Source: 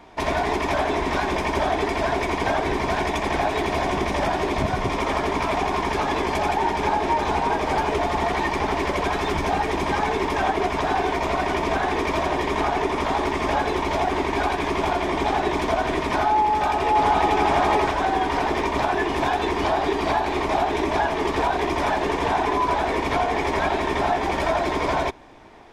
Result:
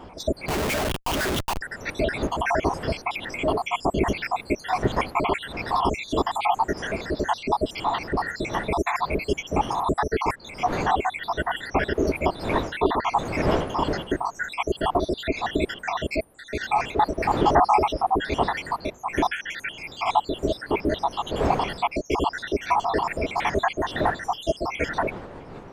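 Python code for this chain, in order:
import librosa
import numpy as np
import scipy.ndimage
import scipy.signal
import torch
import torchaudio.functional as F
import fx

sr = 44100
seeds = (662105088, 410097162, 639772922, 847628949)

y = fx.spec_dropout(x, sr, seeds[0], share_pct=79)
y = fx.dmg_wind(y, sr, seeds[1], corner_hz=620.0, level_db=-40.0)
y = fx.schmitt(y, sr, flips_db=-40.0, at=(0.48, 1.61))
y = y * 10.0 ** (4.0 / 20.0)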